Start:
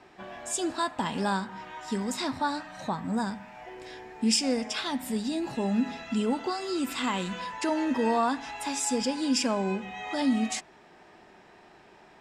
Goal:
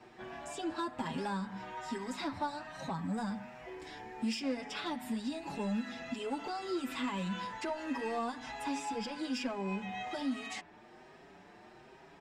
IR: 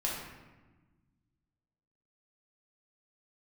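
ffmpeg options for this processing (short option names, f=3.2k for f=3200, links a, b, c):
-filter_complex "[0:a]equalizer=f=160:t=o:w=2.9:g=3.5,acrossover=split=640|3800[a][b][c];[a]acompressor=threshold=-32dB:ratio=4[d];[b]acompressor=threshold=-34dB:ratio=4[e];[c]acompressor=threshold=-51dB:ratio=4[f];[d][e][f]amix=inputs=3:normalize=0,asplit=2[g][h];[h]acrusher=bits=3:mix=0:aa=0.5,volume=-4dB[i];[g][i]amix=inputs=2:normalize=0,asoftclip=type=tanh:threshold=-26dB,asplit=2[j][k];[k]adelay=6.2,afreqshift=1.2[l];[j][l]amix=inputs=2:normalize=1"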